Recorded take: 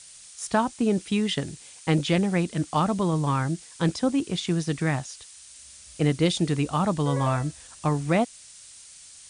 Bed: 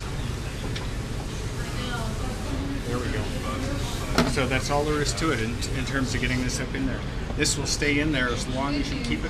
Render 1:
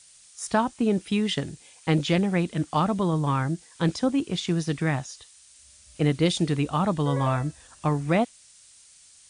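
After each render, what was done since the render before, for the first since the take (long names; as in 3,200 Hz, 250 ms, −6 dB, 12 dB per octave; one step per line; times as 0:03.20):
noise reduction from a noise print 6 dB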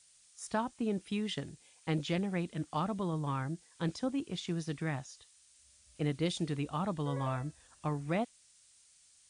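level −10.5 dB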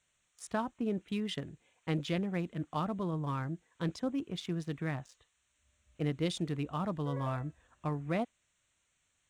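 adaptive Wiener filter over 9 samples
notch filter 830 Hz, Q 13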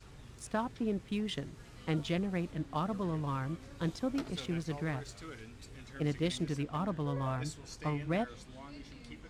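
mix in bed −22.5 dB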